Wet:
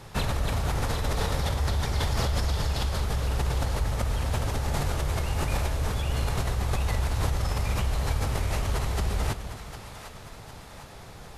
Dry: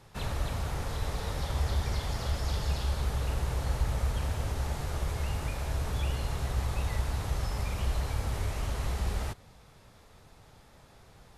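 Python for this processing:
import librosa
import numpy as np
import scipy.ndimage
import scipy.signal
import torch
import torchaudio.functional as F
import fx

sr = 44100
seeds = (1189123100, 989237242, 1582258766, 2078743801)

p1 = fx.over_compress(x, sr, threshold_db=-35.0, ratio=-0.5)
p2 = x + (p1 * librosa.db_to_amplitude(2.0))
y = fx.echo_split(p2, sr, split_hz=630.0, low_ms=234, high_ms=754, feedback_pct=52, wet_db=-10.5)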